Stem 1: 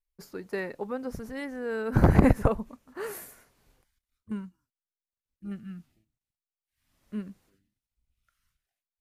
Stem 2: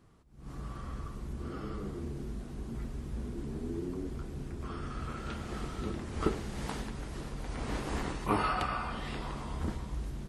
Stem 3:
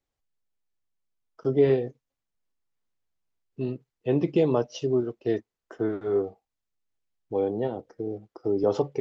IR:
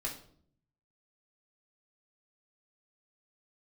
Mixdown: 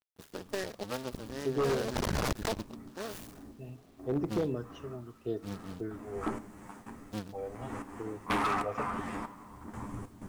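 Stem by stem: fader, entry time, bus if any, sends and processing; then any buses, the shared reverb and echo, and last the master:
-1.0 dB, 0.00 s, no send, cycle switcher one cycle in 2, muted; notch 2100 Hz, Q 6.3; noise-modulated delay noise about 3400 Hz, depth 0.069 ms
-5.5 dB, 0.00 s, send -13.5 dB, minimum comb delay 9.9 ms; graphic EQ 250/1000/2000/4000/8000 Hz +11/+11/+5/-11/+8 dB; step gate ".xxx...xx" 94 bpm -12 dB; auto duck -20 dB, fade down 0.35 s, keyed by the first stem
-9.5 dB, 0.00 s, send -16 dB, phaser stages 6, 0.77 Hz, lowest notch 290–3400 Hz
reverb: on, RT60 0.60 s, pre-delay 3 ms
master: bit-crush 11-bit; wavefolder -23 dBFS

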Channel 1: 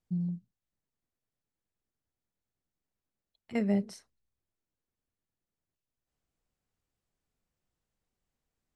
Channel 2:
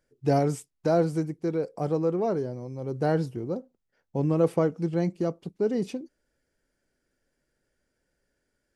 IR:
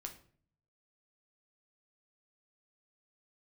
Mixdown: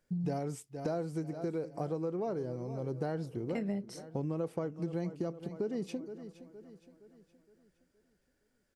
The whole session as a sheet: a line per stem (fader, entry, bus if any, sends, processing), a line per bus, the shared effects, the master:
+1.0 dB, 0.00 s, no send, no echo send, dry
-2.5 dB, 0.00 s, no send, echo send -17.5 dB, dry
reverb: off
echo: feedback echo 0.467 s, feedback 45%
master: compressor 6:1, threshold -32 dBFS, peak gain reduction 12.5 dB

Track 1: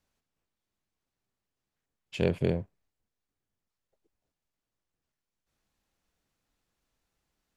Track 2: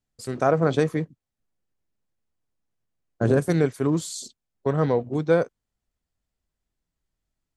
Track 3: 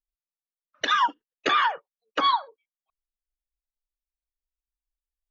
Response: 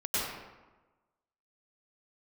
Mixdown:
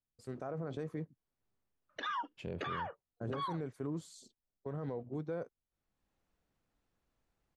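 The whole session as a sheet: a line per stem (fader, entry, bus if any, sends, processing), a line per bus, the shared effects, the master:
+0.5 dB, 0.25 s, no send, auto duck -14 dB, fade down 1.60 s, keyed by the second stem
-12.5 dB, 0.00 s, no send, dry
-8.5 dB, 1.15 s, no send, dry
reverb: off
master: high shelf 2400 Hz -10.5 dB; limiter -30.5 dBFS, peak gain reduction 11 dB

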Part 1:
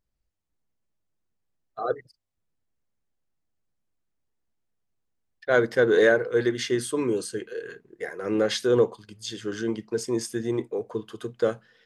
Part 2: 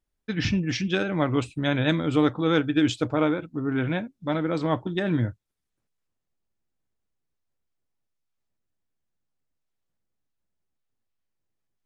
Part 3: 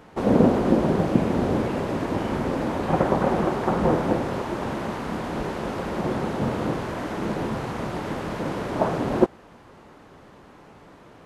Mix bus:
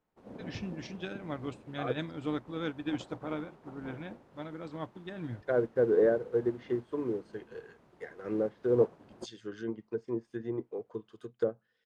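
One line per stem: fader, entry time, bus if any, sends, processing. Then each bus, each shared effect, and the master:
-3.5 dB, 0.00 s, no send, treble ducked by the level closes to 730 Hz, closed at -21 dBFS
-9.0 dB, 0.10 s, no send, dry
-20.0 dB, 0.00 s, no send, dry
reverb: off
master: upward expander 1.5:1, over -48 dBFS

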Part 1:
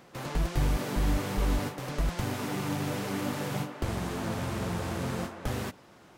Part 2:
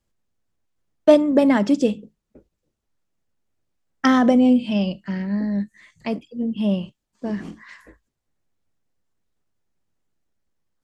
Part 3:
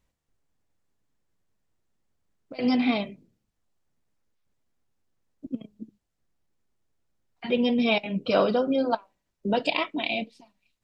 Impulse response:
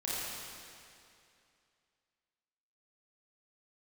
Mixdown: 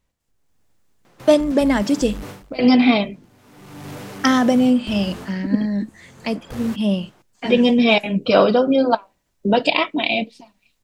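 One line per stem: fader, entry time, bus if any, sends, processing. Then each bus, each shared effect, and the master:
-8.0 dB, 1.05 s, no send, overloaded stage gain 29.5 dB; auto duck -22 dB, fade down 0.20 s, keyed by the third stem
-7.5 dB, 0.20 s, no send, high shelf 3600 Hz +11.5 dB
+2.5 dB, 0.00 s, no send, dry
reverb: off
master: AGC gain up to 9 dB

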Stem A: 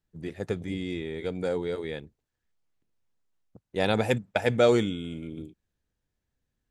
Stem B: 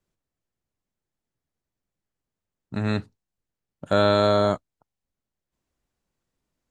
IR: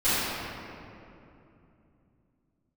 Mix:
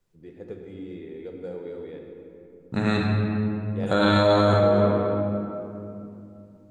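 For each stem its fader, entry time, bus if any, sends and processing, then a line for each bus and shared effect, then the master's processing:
-14.0 dB, 0.00 s, send -16.5 dB, high shelf 3900 Hz -9.5 dB; small resonant body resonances 310/450 Hz, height 6 dB, ringing for 20 ms
+2.0 dB, 0.00 s, send -14 dB, dry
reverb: on, RT60 2.8 s, pre-delay 4 ms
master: limiter -10.5 dBFS, peak gain reduction 8.5 dB

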